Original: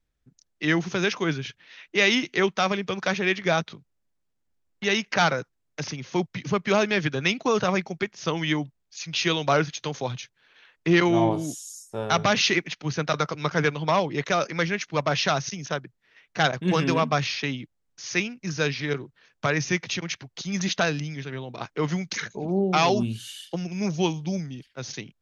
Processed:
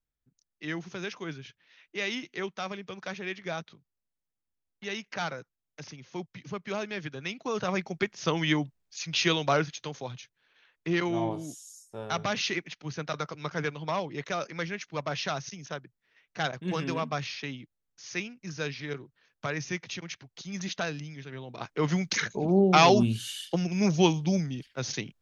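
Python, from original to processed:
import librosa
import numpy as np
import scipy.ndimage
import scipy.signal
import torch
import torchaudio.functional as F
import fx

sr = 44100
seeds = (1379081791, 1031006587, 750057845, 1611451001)

y = fx.gain(x, sr, db=fx.line((7.33, -12.0), (8.02, -1.0), (9.24, -1.0), (10.05, -8.5), (21.22, -8.5), (22.12, 2.0)))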